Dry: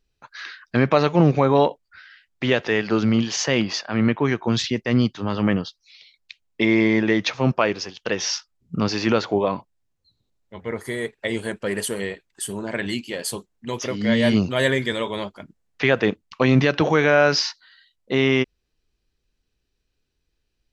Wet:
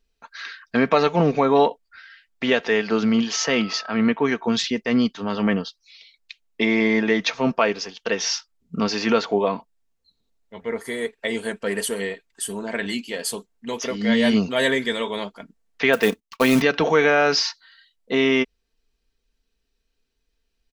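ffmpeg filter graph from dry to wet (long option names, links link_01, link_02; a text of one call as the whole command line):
ffmpeg -i in.wav -filter_complex "[0:a]asettb=1/sr,asplit=3[link_01][link_02][link_03];[link_01]atrim=end=3.334[link_04];[link_02]atrim=start=3.33:end=3.96,asetpts=PTS-STARTPTS,afade=type=in:duration=0.004:curve=qsin,afade=type=out:start_time=0.626:duration=0.004:curve=qsin,lowpass=frequency=7200:width=0.5412,lowpass=frequency=7200:width=1.3066,aeval=exprs='val(0)+0.0141*sin(2*PI*1300*n/s)':channel_layout=same[link_05];[link_03]atrim=start=3.956[link_06];[link_04][link_05]acrossfade=duration=0.004:curve1=hsin:curve2=qsin[link_07];[link_07][link_06]acrossfade=duration=0.004:curve1=qsin:curve2=hsin,asettb=1/sr,asplit=3[link_08][link_09][link_10];[link_08]atrim=end=15.934[link_11];[link_09]atrim=start=15.93:end=16.62,asetpts=PTS-STARTPTS,afade=type=in:duration=0.004:curve=qsin,afade=type=out:start_time=0.686:duration=0.004:curve=qsin,agate=range=-16dB:threshold=-48dB:ratio=16:release=100:detection=peak,highshelf=frequency=3500:gain=6.5,acrusher=bits=4:mode=log:mix=0:aa=0.000001[link_12];[link_10]atrim=start=16.616[link_13];[link_11][link_12]acrossfade=duration=0.004:curve1=hsin:curve2=qsin[link_14];[link_14][link_13]acrossfade=duration=0.004:curve1=qsin:curve2=hsin,equalizer=frequency=110:width_type=o:width=1.4:gain=-8.5,aecho=1:1:4.4:0.48" out.wav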